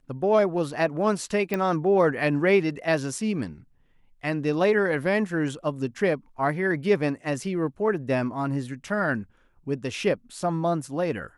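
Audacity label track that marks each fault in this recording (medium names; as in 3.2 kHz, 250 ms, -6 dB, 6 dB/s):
1.540000	1.540000	pop -13 dBFS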